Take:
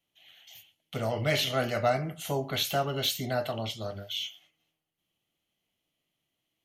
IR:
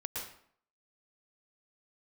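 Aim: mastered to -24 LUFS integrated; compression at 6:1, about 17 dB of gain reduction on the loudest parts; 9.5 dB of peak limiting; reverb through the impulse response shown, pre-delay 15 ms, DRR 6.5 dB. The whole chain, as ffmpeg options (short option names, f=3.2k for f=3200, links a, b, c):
-filter_complex "[0:a]acompressor=threshold=-39dB:ratio=6,alimiter=level_in=14dB:limit=-24dB:level=0:latency=1,volume=-14dB,asplit=2[a][b];[1:a]atrim=start_sample=2205,adelay=15[c];[b][c]afir=irnorm=-1:irlink=0,volume=-8dB[d];[a][d]amix=inputs=2:normalize=0,volume=22.5dB"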